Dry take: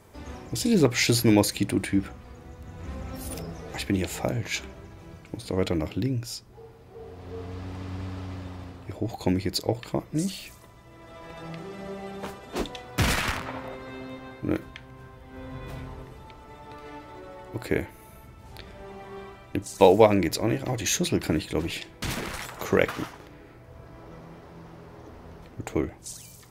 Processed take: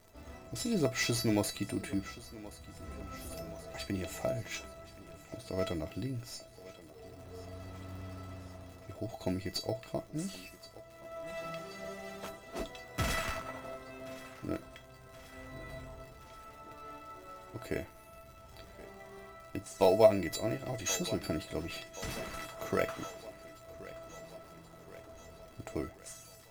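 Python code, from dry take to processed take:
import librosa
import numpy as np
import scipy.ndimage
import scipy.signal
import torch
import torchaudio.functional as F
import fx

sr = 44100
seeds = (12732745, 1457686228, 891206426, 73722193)

p1 = fx.high_shelf(x, sr, hz=2100.0, db=10.0, at=(11.27, 12.29))
p2 = fx.dmg_crackle(p1, sr, seeds[0], per_s=130.0, level_db=-36.0)
p3 = fx.sample_hold(p2, sr, seeds[1], rate_hz=4800.0, jitter_pct=0)
p4 = p2 + (p3 * librosa.db_to_amplitude(-10.0))
p5 = fx.comb_fb(p4, sr, f0_hz=660.0, decay_s=0.21, harmonics='all', damping=0.0, mix_pct=90)
p6 = fx.echo_thinned(p5, sr, ms=1076, feedback_pct=63, hz=180.0, wet_db=-17.0)
y = p6 * librosa.db_to_amplitude(5.0)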